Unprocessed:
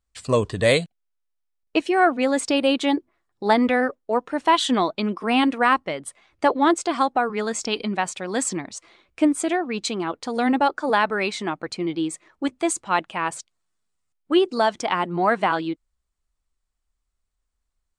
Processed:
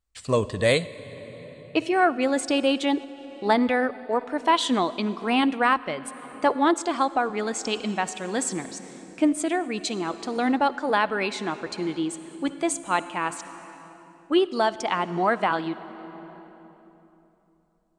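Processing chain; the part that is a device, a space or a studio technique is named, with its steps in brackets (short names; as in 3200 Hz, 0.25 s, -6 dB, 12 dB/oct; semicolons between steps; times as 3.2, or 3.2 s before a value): compressed reverb return (on a send at -9 dB: reverb RT60 3.1 s, pre-delay 49 ms + compressor 10:1, threshold -24 dBFS, peak gain reduction 11 dB); on the sum: gain -2.5 dB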